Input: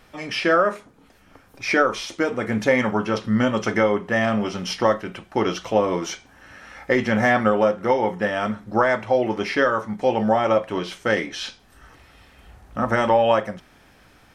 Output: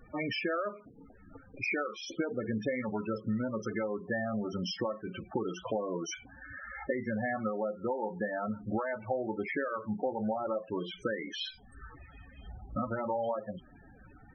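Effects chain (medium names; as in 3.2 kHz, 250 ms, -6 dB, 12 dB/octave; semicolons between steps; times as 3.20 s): compression 20:1, threshold -30 dBFS, peak gain reduction 18.5 dB; loudest bins only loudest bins 16; trim +1.5 dB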